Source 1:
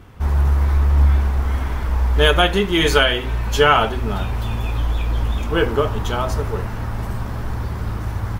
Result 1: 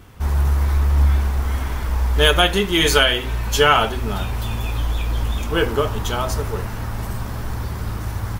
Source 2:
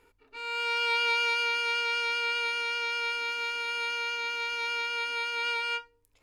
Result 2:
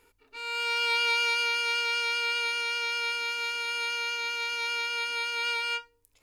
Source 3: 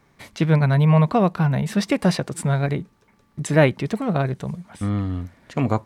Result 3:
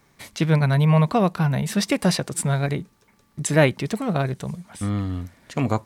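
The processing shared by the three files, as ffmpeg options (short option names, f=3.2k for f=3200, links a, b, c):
-af "highshelf=f=4k:g=9.5,volume=-1.5dB"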